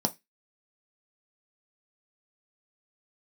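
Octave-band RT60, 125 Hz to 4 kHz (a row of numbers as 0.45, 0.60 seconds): 0.25, 0.20, 0.15, 0.15, 0.25, 0.25 seconds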